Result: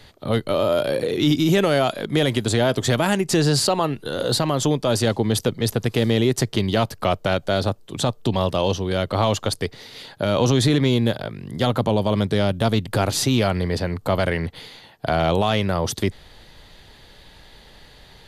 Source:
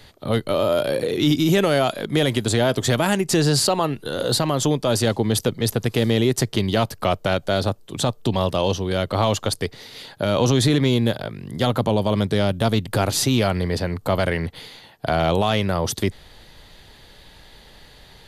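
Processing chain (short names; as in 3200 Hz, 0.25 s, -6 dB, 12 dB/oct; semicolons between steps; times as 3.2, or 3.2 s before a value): high shelf 10000 Hz -5 dB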